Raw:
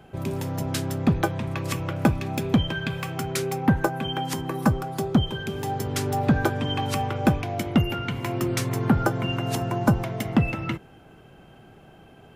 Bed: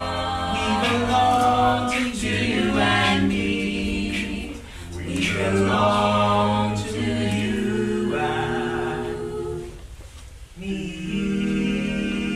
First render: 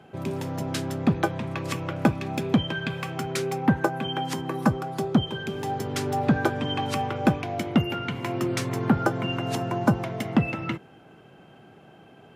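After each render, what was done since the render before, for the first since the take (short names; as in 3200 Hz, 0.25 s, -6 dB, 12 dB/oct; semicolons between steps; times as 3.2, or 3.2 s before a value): HPF 130 Hz 12 dB/oct; high shelf 9700 Hz -10.5 dB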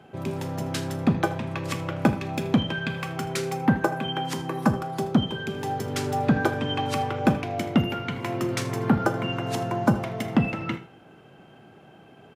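echo 79 ms -18 dB; Schroeder reverb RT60 0.36 s, combs from 28 ms, DRR 12 dB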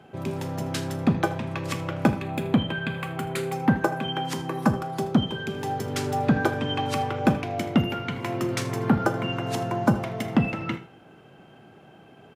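2.21–3.53 bell 5600 Hz -14.5 dB 0.49 oct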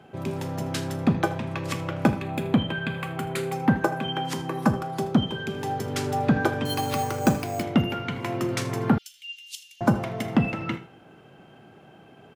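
6.65–7.63 careless resampling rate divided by 6×, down none, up hold; 8.98–9.81 elliptic high-pass 2900 Hz, stop band 60 dB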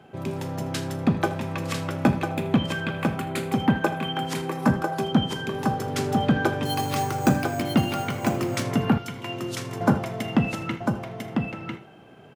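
echo 0.998 s -4.5 dB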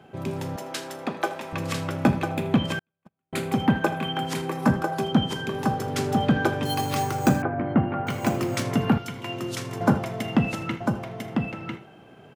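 0.56–1.53 HPF 420 Hz; 2.79–3.33 gate -17 dBFS, range -55 dB; 7.42–8.07 LPF 1800 Hz 24 dB/oct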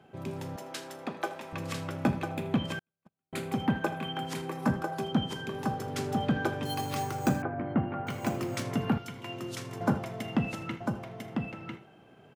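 gain -7 dB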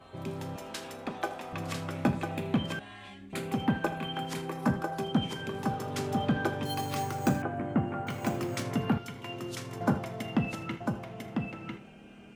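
add bed -28.5 dB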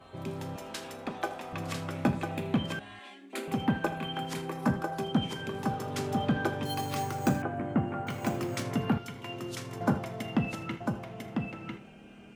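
2.99–3.48 steep high-pass 220 Hz 72 dB/oct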